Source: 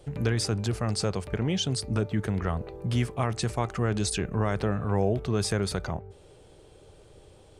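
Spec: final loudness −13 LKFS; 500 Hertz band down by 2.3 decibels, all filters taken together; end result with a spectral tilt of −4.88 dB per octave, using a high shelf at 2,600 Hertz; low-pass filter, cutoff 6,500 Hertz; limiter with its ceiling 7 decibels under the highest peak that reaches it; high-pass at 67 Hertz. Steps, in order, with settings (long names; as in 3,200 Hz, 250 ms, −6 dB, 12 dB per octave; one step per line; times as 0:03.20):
high-pass filter 67 Hz
low-pass filter 6,500 Hz
parametric band 500 Hz −3 dB
high-shelf EQ 2,600 Hz +4.5 dB
level +18.5 dB
brickwall limiter −1.5 dBFS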